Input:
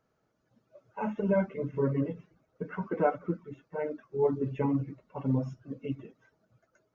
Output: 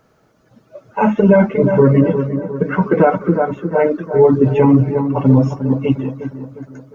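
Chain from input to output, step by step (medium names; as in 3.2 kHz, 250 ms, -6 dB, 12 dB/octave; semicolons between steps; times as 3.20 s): bucket-brigade echo 355 ms, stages 4096, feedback 47%, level -10 dB; loudness maximiser +20 dB; trim -1 dB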